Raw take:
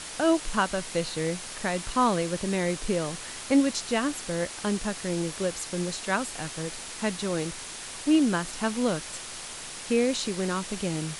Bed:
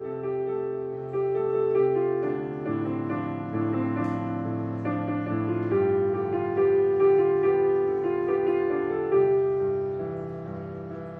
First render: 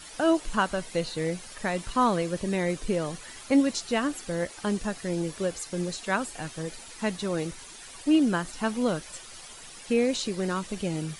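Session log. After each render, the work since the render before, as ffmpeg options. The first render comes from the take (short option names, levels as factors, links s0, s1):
-af "afftdn=nr=11:nf=-40"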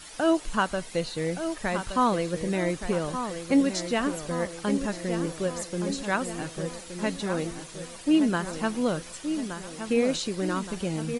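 -filter_complex "[0:a]asplit=2[s0][s1];[s1]adelay=1171,lowpass=f=2800:p=1,volume=0.376,asplit=2[s2][s3];[s3]adelay=1171,lowpass=f=2800:p=1,volume=0.54,asplit=2[s4][s5];[s5]adelay=1171,lowpass=f=2800:p=1,volume=0.54,asplit=2[s6][s7];[s7]adelay=1171,lowpass=f=2800:p=1,volume=0.54,asplit=2[s8][s9];[s9]adelay=1171,lowpass=f=2800:p=1,volume=0.54,asplit=2[s10][s11];[s11]adelay=1171,lowpass=f=2800:p=1,volume=0.54[s12];[s0][s2][s4][s6][s8][s10][s12]amix=inputs=7:normalize=0"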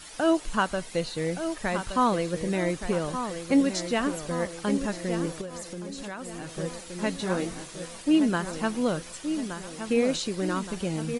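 -filter_complex "[0:a]asettb=1/sr,asplit=3[s0][s1][s2];[s0]atrim=end=5.414[s3];[s1]atrim=start=5.41:end=6.52,asetpts=PTS-STARTPTS,afade=t=in:d=0.004:c=qsin,afade=t=out:st=1.106:d=0.004:c=qsin,acompressor=threshold=0.0224:ratio=6:attack=3.2:release=140:knee=1:detection=peak[s4];[s2]atrim=start=6.516[s5];[s3][s4]acrossfade=d=0.004:c1=hsin:c2=qsin[s6];[s6][s5]acrossfade=d=0.004:c1=qsin:c2=hsin,asettb=1/sr,asplit=3[s7][s8][s9];[s7]atrim=end=7.174[s10];[s8]atrim=start=7.17:end=8.02,asetpts=PTS-STARTPTS,afade=t=in:d=0.004:c=qsin,afade=t=out:st=0.846:d=0.004:c=qsin,asplit=2[s11][s12];[s12]adelay=22,volume=0.473[s13];[s11][s13]amix=inputs=2:normalize=0,atrim=end_sample=37485[s14];[s9]atrim=start=8.016[s15];[s10][s14]acrossfade=d=0.004:c1=hsin:c2=qsin[s16];[s16][s15]acrossfade=d=0.004:c1=qsin:c2=hsin"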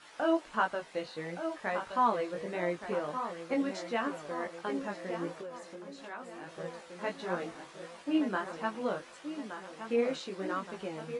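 -af "flanger=delay=17:depth=4.1:speed=1.5,bandpass=f=1000:t=q:w=0.6:csg=0"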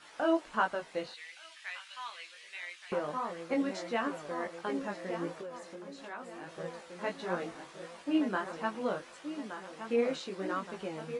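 -filter_complex "[0:a]asettb=1/sr,asplit=3[s0][s1][s2];[s0]atrim=end=1.144[s3];[s1]atrim=start=1.14:end=2.92,asetpts=PTS-STARTPTS,afade=t=in:d=0.004:c=qsin,afade=t=out:st=1.776:d=0.004:c=qsin,highpass=f=2700:t=q:w=1.6[s4];[s2]atrim=start=2.916[s5];[s3][s4]acrossfade=d=0.004:c1=hsin:c2=qsin[s6];[s6][s5]acrossfade=d=0.004:c1=qsin:c2=hsin"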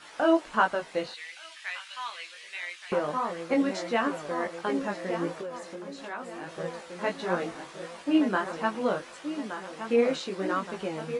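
-af "volume=2"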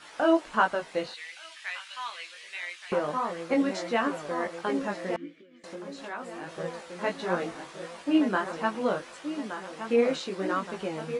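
-filter_complex "[0:a]asettb=1/sr,asplit=3[s0][s1][s2];[s0]atrim=end=5.164[s3];[s1]atrim=start=5.16:end=5.64,asetpts=PTS-STARTPTS,afade=t=in:d=0.004:c=qsin,afade=t=out:st=0.476:d=0.004:c=qsin,asplit=3[s4][s5][s6];[s4]bandpass=f=270:t=q:w=8,volume=1[s7];[s5]bandpass=f=2290:t=q:w=8,volume=0.501[s8];[s6]bandpass=f=3010:t=q:w=8,volume=0.355[s9];[s7][s8][s9]amix=inputs=3:normalize=0[s10];[s2]atrim=start=5.636[s11];[s3][s10]acrossfade=d=0.004:c1=hsin:c2=qsin[s12];[s12][s11]acrossfade=d=0.004:c1=qsin:c2=hsin"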